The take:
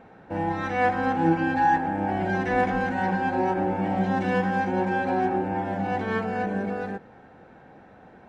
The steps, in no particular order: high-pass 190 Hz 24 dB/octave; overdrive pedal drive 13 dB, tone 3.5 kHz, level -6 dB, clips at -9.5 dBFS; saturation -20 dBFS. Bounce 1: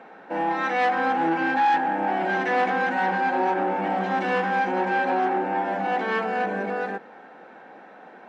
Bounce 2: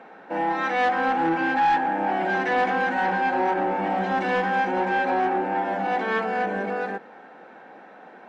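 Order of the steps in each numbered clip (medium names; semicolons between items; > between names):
saturation > overdrive pedal > high-pass; high-pass > saturation > overdrive pedal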